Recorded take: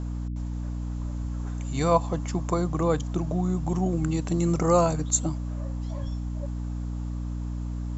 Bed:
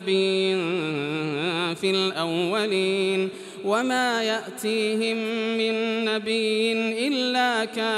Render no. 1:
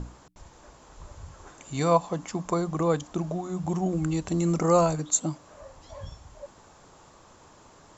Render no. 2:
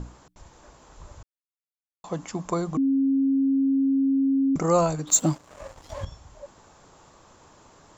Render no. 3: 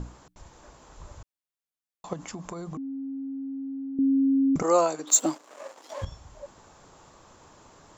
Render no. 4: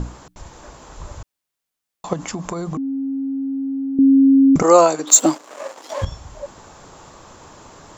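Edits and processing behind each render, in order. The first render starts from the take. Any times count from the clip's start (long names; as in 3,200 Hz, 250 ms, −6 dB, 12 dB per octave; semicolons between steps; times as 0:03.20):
mains-hum notches 60/120/180/240/300 Hz
0:01.23–0:02.04: silence; 0:02.77–0:04.56: beep over 271 Hz −18.5 dBFS; 0:05.07–0:06.05: leveller curve on the samples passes 2
0:02.13–0:03.99: downward compressor 10 to 1, threshold −33 dBFS; 0:04.62–0:06.02: high-pass filter 280 Hz 24 dB per octave
level +10.5 dB; brickwall limiter −1 dBFS, peak gain reduction 2.5 dB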